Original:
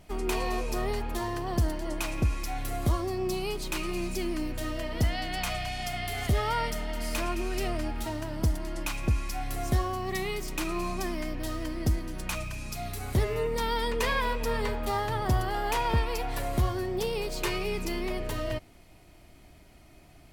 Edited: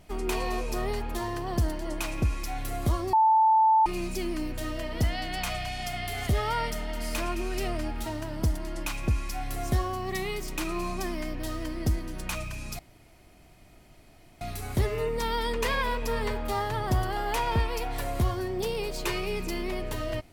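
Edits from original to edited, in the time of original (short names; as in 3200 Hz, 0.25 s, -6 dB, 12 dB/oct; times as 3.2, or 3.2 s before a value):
3.13–3.86 bleep 881 Hz -17 dBFS
12.79 insert room tone 1.62 s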